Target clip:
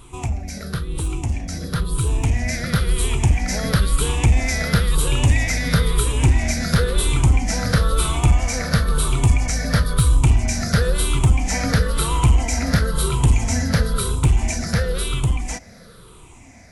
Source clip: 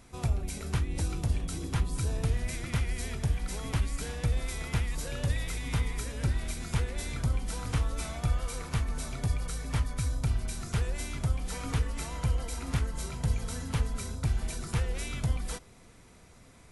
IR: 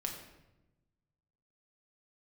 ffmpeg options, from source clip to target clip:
-filter_complex "[0:a]afftfilt=real='re*pow(10,14/40*sin(2*PI*(0.65*log(max(b,1)*sr/1024/100)/log(2)-(-0.99)*(pts-256)/sr)))':imag='im*pow(10,14/40*sin(2*PI*(0.65*log(max(b,1)*sr/1024/100)/log(2)-(-0.99)*(pts-256)/sr)))':win_size=1024:overlap=0.75,asplit=2[a][b];[b]acompressor=threshold=-39dB:ratio=6,volume=-1dB[c];[a][c]amix=inputs=2:normalize=0,volume=19dB,asoftclip=hard,volume=-19dB,dynaudnorm=f=700:g=7:m=9dB,volume=2dB"

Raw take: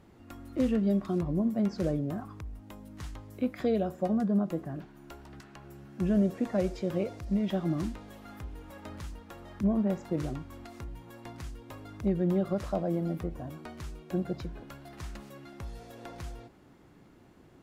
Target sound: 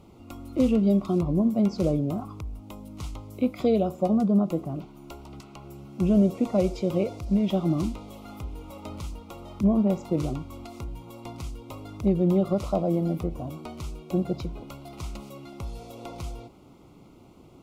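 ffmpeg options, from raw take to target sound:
-af "asuperstop=centerf=1700:order=4:qfactor=2.1,volume=5.5dB"

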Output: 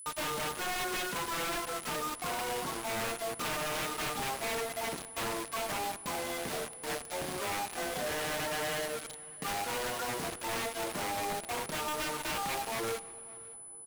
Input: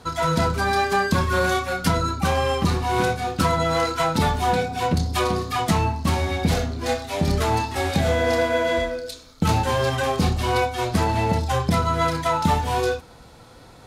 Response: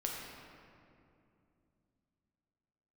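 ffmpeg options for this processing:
-filter_complex "[0:a]highpass=400,aemphasis=mode=reproduction:type=50kf,bandreject=f=60:t=h:w=6,bandreject=f=120:t=h:w=6,bandreject=f=180:t=h:w=6,bandreject=f=240:t=h:w=6,bandreject=f=300:t=h:w=6,bandreject=f=360:t=h:w=6,bandreject=f=420:t=h:w=6,bandreject=f=480:t=h:w=6,bandreject=f=540:t=h:w=6,adynamicequalizer=threshold=0.00501:dfrequency=4600:dqfactor=0.96:tfrequency=4600:tqfactor=0.96:attack=5:release=100:ratio=0.375:range=2.5:mode=cutabove:tftype=bell,areverse,acompressor=mode=upward:threshold=-33dB:ratio=2.5,areverse,asetrate=40440,aresample=44100,atempo=1.09051,asoftclip=type=tanh:threshold=-16dB,acrusher=bits=4:mix=0:aa=0.000001,aeval=exprs='val(0)+0.00891*sin(2*PI*10000*n/s)':c=same,aeval=exprs='0.0531*(abs(mod(val(0)/0.0531+3,4)-2)-1)':c=same,asplit=2[a][b];[b]adelay=565.6,volume=-21dB,highshelf=f=4k:g=-12.7[c];[a][c]amix=inputs=2:normalize=0,asplit=2[d][e];[1:a]atrim=start_sample=2205,asetrate=24696,aresample=44100[f];[e][f]afir=irnorm=-1:irlink=0,volume=-21dB[g];[d][g]amix=inputs=2:normalize=0,volume=-5dB"

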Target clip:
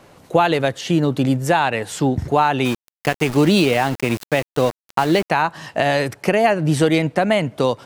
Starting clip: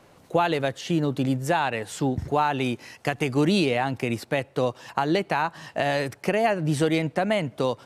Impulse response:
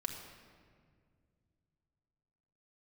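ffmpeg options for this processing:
-filter_complex "[0:a]asettb=1/sr,asplit=3[a][b][c];[a]atrim=end=2.654[d];[b]atrim=start=2.65:end=5.3,asetpts=PTS-STARTPTS,afade=t=in:d=0.004:c=qsin,afade=t=out:st=2.646:d=0.004:c=qsin,aeval=exprs='val(0)*gte(abs(val(0)),0.0266)':c=same[e];[c]atrim=start=5.296[f];[d][e]acrossfade=d=0.004:c1=hsin:c2=qsin[g];[g][f]acrossfade=d=0.004:c1=qsin:c2=hsin,volume=6.5dB"

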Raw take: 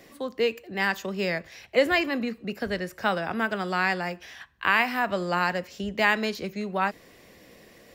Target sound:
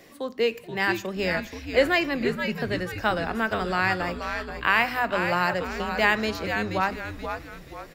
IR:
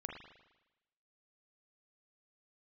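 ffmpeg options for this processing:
-filter_complex "[0:a]bandreject=f=50:t=h:w=6,bandreject=f=100:t=h:w=6,bandreject=f=150:t=h:w=6,bandreject=f=200:t=h:w=6,bandreject=f=250:t=h:w=6,asplit=6[a][b][c][d][e][f];[b]adelay=479,afreqshift=-120,volume=-7dB[g];[c]adelay=958,afreqshift=-240,volume=-14.7dB[h];[d]adelay=1437,afreqshift=-360,volume=-22.5dB[i];[e]adelay=1916,afreqshift=-480,volume=-30.2dB[j];[f]adelay=2395,afreqshift=-600,volume=-38dB[k];[a][g][h][i][j][k]amix=inputs=6:normalize=0,asplit=2[l][m];[1:a]atrim=start_sample=2205[n];[m][n]afir=irnorm=-1:irlink=0,volume=-16.5dB[o];[l][o]amix=inputs=2:normalize=0"

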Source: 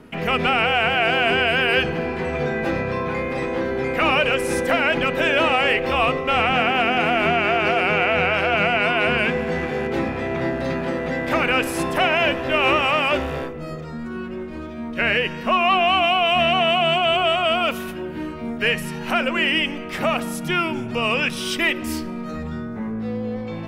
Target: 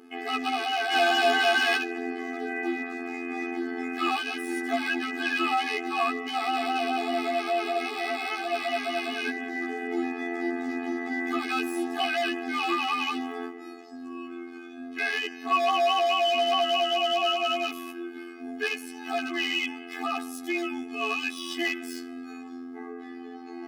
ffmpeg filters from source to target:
-filter_complex "[0:a]asettb=1/sr,asplit=3[a][b][c];[a]atrim=end=0.914[d];[b]atrim=start=0.91:end=1.77,asetpts=PTS-STARTPTS,afade=t=in:d=0.004:c=qsin,afade=t=out:st=0.856:d=0.004:c=qsin,acontrast=86[e];[c]atrim=start=1.766[f];[d][e]acrossfade=d=0.004:c1=hsin:c2=qsin[g];[g][f]acrossfade=d=0.004:c1=qsin:c2=hsin,afftfilt=real='hypot(re,im)*cos(PI*b)':imag='0':win_size=2048:overlap=0.75,aeval=exprs='1.41*(cos(1*acos(clip(val(0)/1.41,-1,1)))-cos(1*PI/2))+0.0562*(cos(4*acos(clip(val(0)/1.41,-1,1)))-cos(4*PI/2))':c=same,aeval=exprs='clip(val(0),-1,0.178)':c=same,afftfilt=real='re*eq(mod(floor(b*sr/1024/220),2),1)':imag='im*eq(mod(floor(b*sr/1024/220),2),1)':win_size=1024:overlap=0.75"

